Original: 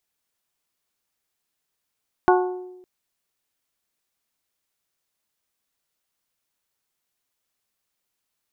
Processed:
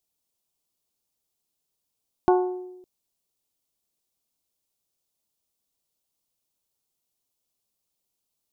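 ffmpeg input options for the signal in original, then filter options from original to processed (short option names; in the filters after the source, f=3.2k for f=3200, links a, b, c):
-f lavfi -i "aevalsrc='0.211*pow(10,-3*t/1.01)*sin(2*PI*365*t)+0.168*pow(10,-3*t/0.622)*sin(2*PI*730*t)+0.133*pow(10,-3*t/0.547)*sin(2*PI*876*t)+0.106*pow(10,-3*t/0.468)*sin(2*PI*1095*t)+0.0841*pow(10,-3*t/0.383)*sin(2*PI*1460*t)':d=0.56:s=44100"
-af "equalizer=f=1.7k:t=o:w=1.2:g=-14.5"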